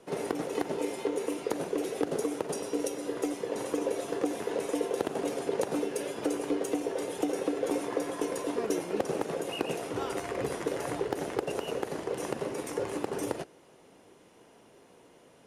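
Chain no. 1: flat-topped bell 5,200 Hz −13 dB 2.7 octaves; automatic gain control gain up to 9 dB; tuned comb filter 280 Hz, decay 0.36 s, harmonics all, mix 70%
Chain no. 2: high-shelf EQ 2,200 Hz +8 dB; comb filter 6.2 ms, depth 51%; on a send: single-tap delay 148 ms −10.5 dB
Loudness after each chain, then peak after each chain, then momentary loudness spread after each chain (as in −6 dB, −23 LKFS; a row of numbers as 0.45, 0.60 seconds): −33.5, −30.0 LKFS; −15.5, −12.5 dBFS; 4, 3 LU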